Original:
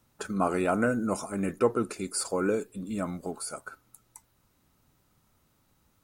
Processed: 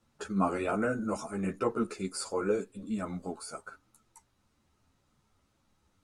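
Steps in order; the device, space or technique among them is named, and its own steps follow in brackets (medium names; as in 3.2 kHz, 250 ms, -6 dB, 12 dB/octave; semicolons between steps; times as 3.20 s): string-machine ensemble chorus (three-phase chorus; low-pass 8 kHz 12 dB/octave)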